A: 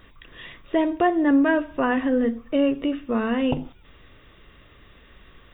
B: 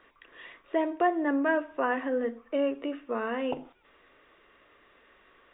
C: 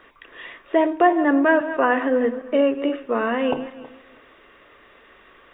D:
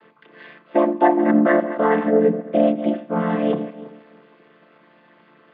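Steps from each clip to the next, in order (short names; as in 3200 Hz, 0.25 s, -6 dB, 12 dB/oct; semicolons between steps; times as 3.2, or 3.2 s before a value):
three-band isolator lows -21 dB, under 310 Hz, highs -16 dB, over 2800 Hz; gain -3.5 dB
regenerating reverse delay 0.161 s, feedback 43%, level -12.5 dB; gain +9 dB
chord vocoder minor triad, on D3; gain +2.5 dB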